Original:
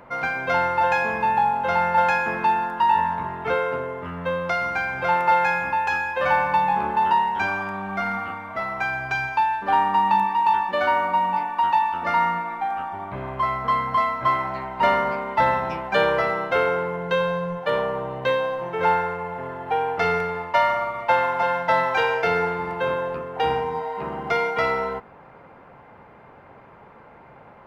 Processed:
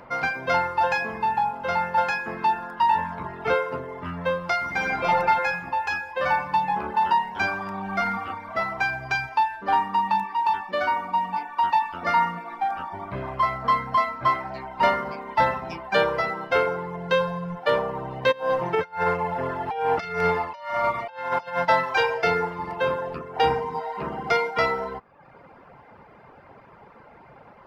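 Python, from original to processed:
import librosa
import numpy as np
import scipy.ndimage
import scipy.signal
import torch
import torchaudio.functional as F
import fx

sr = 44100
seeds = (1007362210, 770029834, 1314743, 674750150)

y = fx.reverb_throw(x, sr, start_s=4.65, length_s=0.44, rt60_s=2.2, drr_db=-3.5)
y = fx.over_compress(y, sr, threshold_db=-26.0, ratio=-0.5, at=(18.31, 21.64), fade=0.02)
y = fx.dereverb_blind(y, sr, rt60_s=0.78)
y = fx.peak_eq(y, sr, hz=5000.0, db=7.5, octaves=0.39)
y = fx.rider(y, sr, range_db=4, speed_s=2.0)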